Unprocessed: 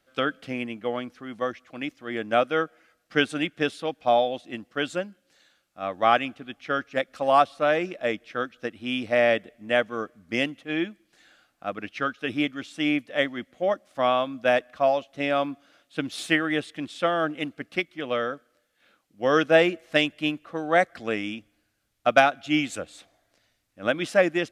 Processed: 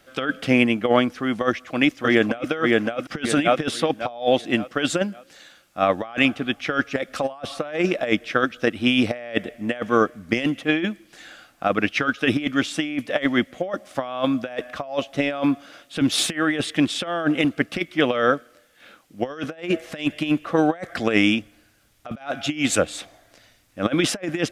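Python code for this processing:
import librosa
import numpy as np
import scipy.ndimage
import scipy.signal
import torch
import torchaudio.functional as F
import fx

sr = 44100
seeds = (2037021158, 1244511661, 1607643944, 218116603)

y = fx.echo_throw(x, sr, start_s=1.48, length_s=1.02, ms=560, feedback_pct=35, wet_db=-2.0)
y = fx.notch(y, sr, hz=4200.0, q=26.0)
y = fx.over_compress(y, sr, threshold_db=-29.0, ratio=-0.5)
y = y * 10.0 ** (8.5 / 20.0)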